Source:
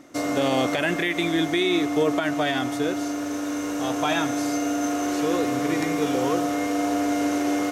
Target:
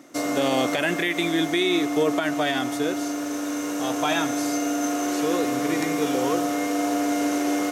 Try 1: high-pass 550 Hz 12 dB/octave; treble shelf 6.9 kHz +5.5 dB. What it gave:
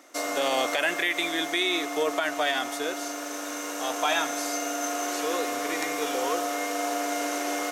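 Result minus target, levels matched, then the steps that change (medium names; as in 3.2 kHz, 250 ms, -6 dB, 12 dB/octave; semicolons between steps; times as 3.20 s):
125 Hz band -16.5 dB
change: high-pass 140 Hz 12 dB/octave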